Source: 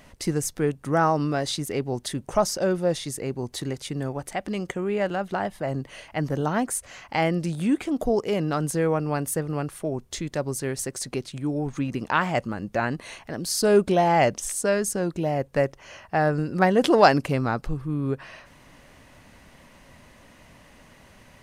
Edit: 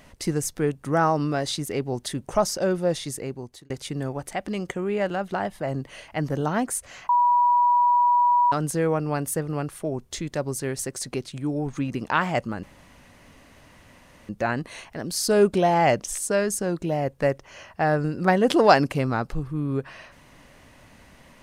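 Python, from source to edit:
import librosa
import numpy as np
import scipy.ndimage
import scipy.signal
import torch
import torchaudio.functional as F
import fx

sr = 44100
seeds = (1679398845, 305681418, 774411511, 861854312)

y = fx.edit(x, sr, fx.fade_out_span(start_s=3.14, length_s=0.56),
    fx.bleep(start_s=7.09, length_s=1.43, hz=971.0, db=-15.5),
    fx.insert_room_tone(at_s=12.63, length_s=1.66), tone=tone)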